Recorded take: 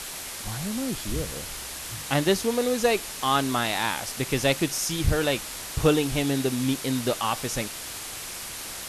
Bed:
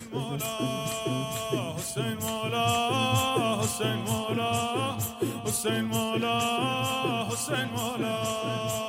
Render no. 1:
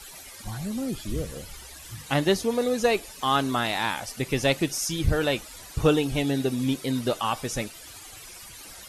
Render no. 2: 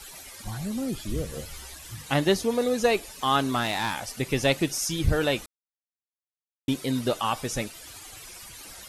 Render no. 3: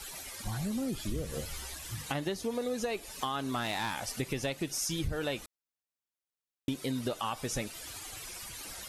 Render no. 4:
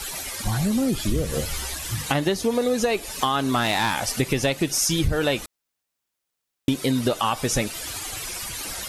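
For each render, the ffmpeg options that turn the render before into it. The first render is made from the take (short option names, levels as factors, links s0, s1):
-af "afftdn=nr=14:nf=-37"
-filter_complex "[0:a]asettb=1/sr,asplit=3[s0][s1][s2];[s0]atrim=end=1.324[s3];[s1]atrim=start=1.32:end=1.75,asetpts=PTS-STARTPTS,afade=t=in:d=0.004:c=qsin,afade=t=out:st=0.426:d=0.004:c=qsin,asplit=2[s4][s5];[s5]adelay=13,volume=0.631[s6];[s4][s6]amix=inputs=2:normalize=0,atrim=end_sample=18963[s7];[s2]atrim=start=1.746[s8];[s3][s7]acrossfade=d=0.004:c1=hsin:c2=qsin[s9];[s9][s8]acrossfade=d=0.004:c1=qsin:c2=hsin,asettb=1/sr,asplit=3[s10][s11][s12];[s10]atrim=end=3.524[s13];[s11]atrim=start=3.52:end=4.14,asetpts=PTS-STARTPTS,afade=t=in:d=0.004:c=qsin,afade=t=out:st=0.616:d=0.004:c=qsin,aeval=exprs='clip(val(0),-1,0.1)':c=same[s14];[s12]atrim=start=4.136[s15];[s13][s14]acrossfade=d=0.004:c1=hsin:c2=qsin[s16];[s16][s15]acrossfade=d=0.004:c1=qsin:c2=hsin,asplit=3[s17][s18][s19];[s17]atrim=end=5.46,asetpts=PTS-STARTPTS,afade=t=out:st=5.456:d=0.004:c=hsin[s20];[s18]atrim=start=5.46:end=6.68,asetpts=PTS-STARTPTS,volume=0[s21];[s19]atrim=start=6.68,asetpts=PTS-STARTPTS,afade=t=in:d=0.004:c=hsin[s22];[s20][s21][s22]concat=n=3:v=0:a=1"
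-af "alimiter=limit=0.158:level=0:latency=1:release=362,acompressor=threshold=0.0282:ratio=4"
-af "volume=3.76"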